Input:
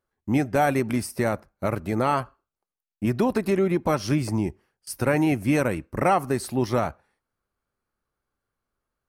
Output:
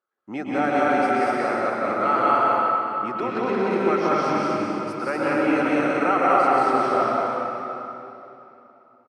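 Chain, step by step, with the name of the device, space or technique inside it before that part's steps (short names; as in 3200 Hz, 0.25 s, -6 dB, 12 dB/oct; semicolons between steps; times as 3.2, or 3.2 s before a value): station announcement (BPF 330–4000 Hz; bell 1300 Hz +10.5 dB 0.22 oct; loudspeakers at several distances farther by 62 m -1 dB, 83 m -2 dB; reverb RT60 3.1 s, pre-delay 0.105 s, DRR -3 dB); 3.23–3.71 LPF 7500 Hz 12 dB/oct; gain -4.5 dB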